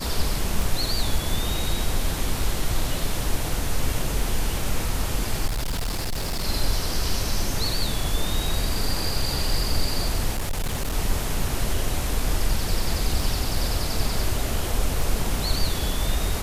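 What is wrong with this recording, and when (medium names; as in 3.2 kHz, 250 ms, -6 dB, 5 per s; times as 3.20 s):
tick 33 1/3 rpm
5.46–6.44 s: clipped -22.5 dBFS
10.35–10.94 s: clipped -21.5 dBFS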